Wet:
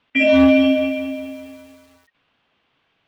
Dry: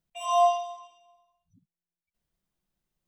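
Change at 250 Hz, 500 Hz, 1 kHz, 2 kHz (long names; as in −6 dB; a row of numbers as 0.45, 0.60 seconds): can't be measured, +11.0 dB, −7.5 dB, +24.5 dB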